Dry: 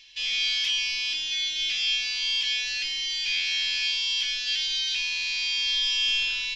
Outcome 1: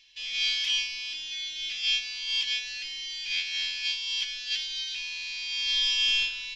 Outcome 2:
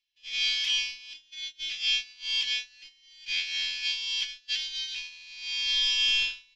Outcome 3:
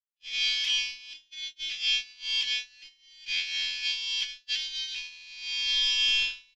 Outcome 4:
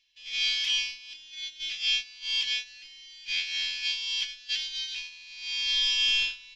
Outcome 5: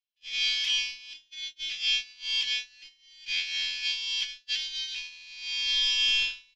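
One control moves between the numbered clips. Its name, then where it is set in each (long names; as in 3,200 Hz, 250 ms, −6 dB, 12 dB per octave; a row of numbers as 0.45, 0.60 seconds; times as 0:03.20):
noise gate, range: −7, −32, −59, −19, −45 decibels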